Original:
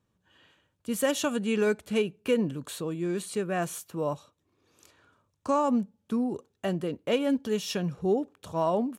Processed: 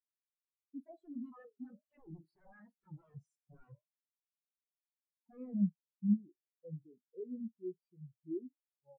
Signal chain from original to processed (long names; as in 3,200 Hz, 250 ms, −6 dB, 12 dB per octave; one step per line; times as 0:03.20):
source passing by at 0:02.82, 55 m/s, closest 4 metres
downward compressor 10 to 1, threshold −46 dBFS, peak gain reduction 20 dB
flanger 1.5 Hz, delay 7.8 ms, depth 6.4 ms, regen +84%
sine wavefolder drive 18 dB, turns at −41.5 dBFS
double-tracking delay 44 ms −10 dB
convolution reverb RT60 1.1 s, pre-delay 3 ms, DRR 19.5 dB
every bin expanded away from the loudest bin 4 to 1
level +16 dB